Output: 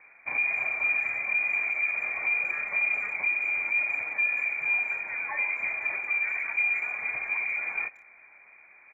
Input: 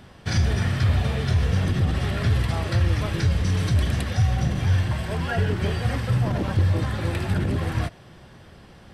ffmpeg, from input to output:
-filter_complex "[0:a]lowpass=f=2.1k:t=q:w=0.5098,lowpass=f=2.1k:t=q:w=0.6013,lowpass=f=2.1k:t=q:w=0.9,lowpass=f=2.1k:t=q:w=2.563,afreqshift=-2500,asplit=2[a][b];[b]adelay=180,highpass=300,lowpass=3.4k,asoftclip=type=hard:threshold=-19dB,volume=-25dB[c];[a][c]amix=inputs=2:normalize=0,volume=-7dB"

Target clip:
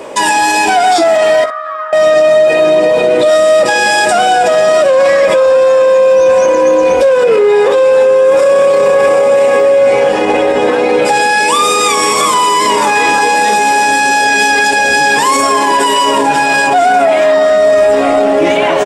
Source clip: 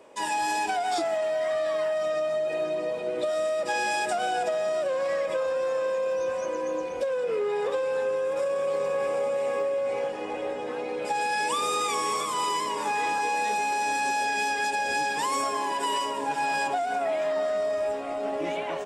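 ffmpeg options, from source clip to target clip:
-filter_complex "[0:a]asettb=1/sr,asplit=3[a][b][c];[a]atrim=end=1.444[d];[b]atrim=start=1.44:end=1.93,asetpts=PTS-STARTPTS,afade=t=in:d=0.004:c=qsin,afade=t=out:st=0.486:d=0.004:c=qsin,bandpass=f=1.3k:t=q:w=9.9:csg=0[e];[c]atrim=start=1.926[f];[d][e]acrossfade=d=0.004:c1=hsin:c2=qsin[g];[g][f]acrossfade=d=0.004:c1=qsin:c2=hsin,aecho=1:1:15|61:0.335|0.168,alimiter=level_in=25.5dB:limit=-1dB:release=50:level=0:latency=1,volume=-1dB"

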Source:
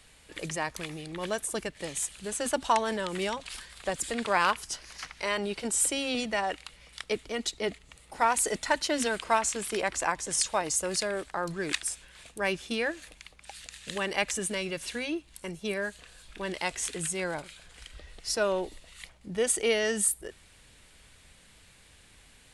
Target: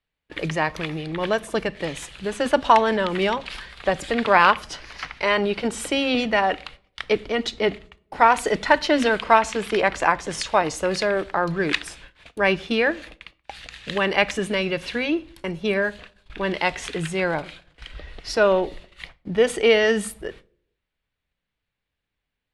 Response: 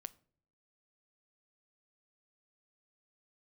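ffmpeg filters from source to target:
-filter_complex "[0:a]agate=range=-34dB:threshold=-49dB:ratio=16:detection=peak,asplit=2[a][b];[1:a]atrim=start_sample=2205,lowpass=3.9k[c];[b][c]afir=irnorm=-1:irlink=0,volume=17.5dB[d];[a][d]amix=inputs=2:normalize=0,volume=-4.5dB"

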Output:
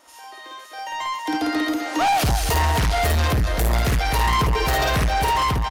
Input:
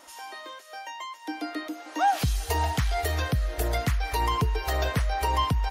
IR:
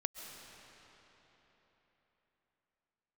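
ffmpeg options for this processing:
-af "aecho=1:1:52.48|253.6:0.891|0.316,asoftclip=type=tanh:threshold=-27.5dB,dynaudnorm=f=370:g=5:m=14dB,volume=-3dB"

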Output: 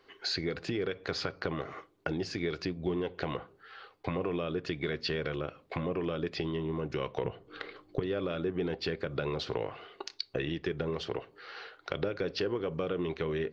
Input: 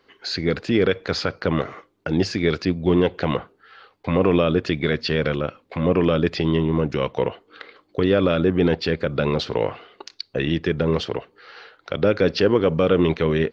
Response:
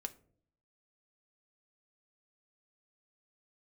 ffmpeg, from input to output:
-filter_complex "[0:a]asettb=1/sr,asplit=3[a][b][c];[a]atrim=end=7.244[d];[b]atrim=start=7.24:end=8,asetpts=PTS-STARTPTS,afade=t=in:d=0.004:c=qsin,afade=t=out:st=0.756:d=0.004:c=qsin,lowshelf=f=300:g=12[e];[c]atrim=start=7.996[f];[d][e]acrossfade=d=0.004:c1=hsin:c2=qsin[g];[g][f]acrossfade=d=0.004:c1=qsin:c2=hsin,acompressor=threshold=-27dB:ratio=6,equalizer=f=220:t=o:w=0.33:g=-6.5,asplit=2[h][i];[1:a]atrim=start_sample=2205,asetrate=79380,aresample=44100[j];[i][j]afir=irnorm=-1:irlink=0,volume=6dB[k];[h][k]amix=inputs=2:normalize=0,volume=-7.5dB"

